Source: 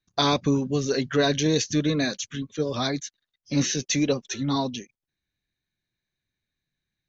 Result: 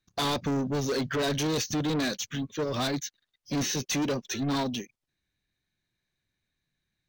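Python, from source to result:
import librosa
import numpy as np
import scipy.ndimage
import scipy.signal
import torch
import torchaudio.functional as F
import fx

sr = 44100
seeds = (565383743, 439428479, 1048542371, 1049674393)

p1 = fx.level_steps(x, sr, step_db=13)
p2 = x + (p1 * librosa.db_to_amplitude(-3.0))
p3 = 10.0 ** (-25.0 / 20.0) * np.tanh(p2 / 10.0 ** (-25.0 / 20.0))
y = np.interp(np.arange(len(p3)), np.arange(len(p3))[::2], p3[::2])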